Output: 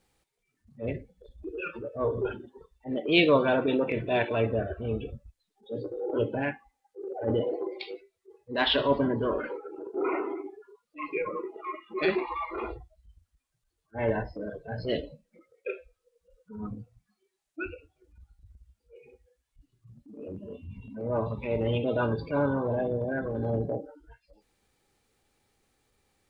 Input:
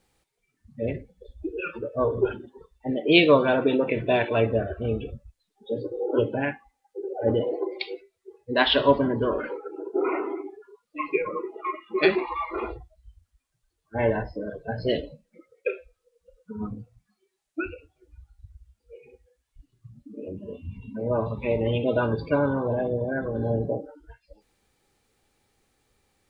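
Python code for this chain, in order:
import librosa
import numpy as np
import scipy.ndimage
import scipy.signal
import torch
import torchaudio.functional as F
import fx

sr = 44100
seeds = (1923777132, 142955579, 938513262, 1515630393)

y = fx.transient(x, sr, attack_db=-8, sustain_db=-1)
y = y * librosa.db_to_amplitude(-2.0)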